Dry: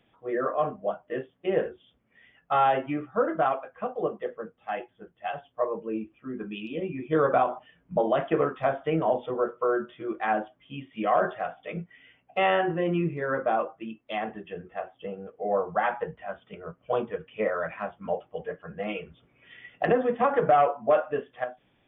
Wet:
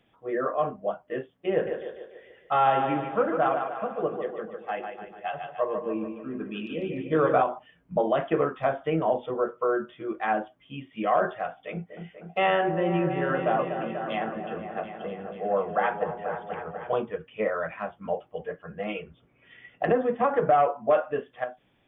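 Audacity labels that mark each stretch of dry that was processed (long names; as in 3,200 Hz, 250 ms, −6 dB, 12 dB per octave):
1.520000	7.420000	echo with a time of its own for lows and highs split 330 Hz, lows 81 ms, highs 147 ms, level −6 dB
11.480000	16.940000	echo whose low-pass opens from repeat to repeat 244 ms, low-pass from 750 Hz, each repeat up 1 octave, level −6 dB
19.020000	20.760000	high-shelf EQ 2,800 Hz −6.5 dB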